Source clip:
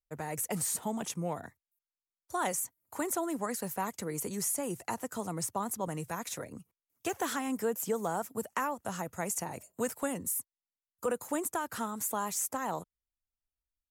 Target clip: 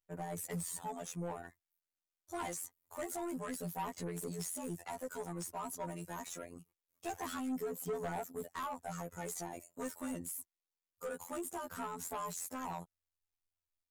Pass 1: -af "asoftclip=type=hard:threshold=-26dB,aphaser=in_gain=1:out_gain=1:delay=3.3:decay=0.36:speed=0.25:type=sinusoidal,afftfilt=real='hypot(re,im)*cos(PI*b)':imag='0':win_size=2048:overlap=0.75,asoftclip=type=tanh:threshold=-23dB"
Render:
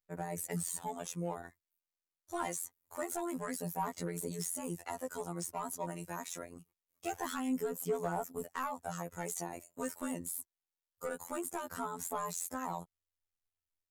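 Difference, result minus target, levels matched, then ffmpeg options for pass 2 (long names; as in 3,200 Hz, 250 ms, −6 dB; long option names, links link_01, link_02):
soft clipping: distortion −7 dB
-af "asoftclip=type=hard:threshold=-26dB,aphaser=in_gain=1:out_gain=1:delay=3.3:decay=0.36:speed=0.25:type=sinusoidal,afftfilt=real='hypot(re,im)*cos(PI*b)':imag='0':win_size=2048:overlap=0.75,asoftclip=type=tanh:threshold=-33dB"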